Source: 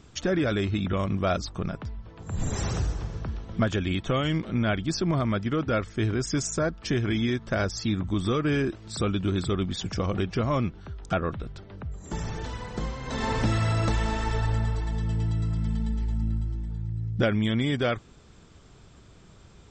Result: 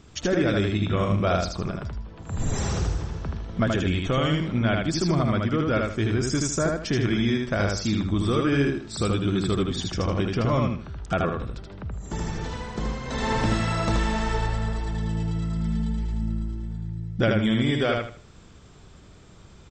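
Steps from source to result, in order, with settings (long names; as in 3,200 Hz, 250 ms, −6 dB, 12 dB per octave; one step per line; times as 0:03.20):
0:00.79–0:01.28: double-tracking delay 29 ms −6.5 dB
repeating echo 78 ms, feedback 29%, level −3 dB
level +1 dB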